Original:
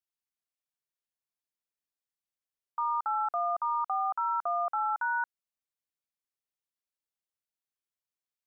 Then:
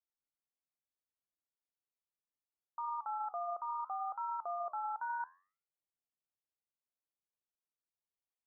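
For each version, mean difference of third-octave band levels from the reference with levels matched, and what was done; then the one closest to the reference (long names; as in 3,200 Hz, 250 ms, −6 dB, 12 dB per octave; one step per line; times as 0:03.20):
1.5 dB: low-pass filter 1,200 Hz 24 dB per octave
brickwall limiter −28 dBFS, peak gain reduction 3 dB
flanger 0.71 Hz, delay 8.6 ms, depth 7.2 ms, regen −84%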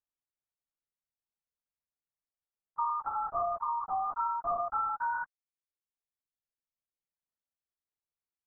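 5.5 dB: low-pass filter 1,300 Hz 12 dB per octave
reverb reduction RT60 1.4 s
linear-prediction vocoder at 8 kHz whisper
level +1.5 dB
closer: first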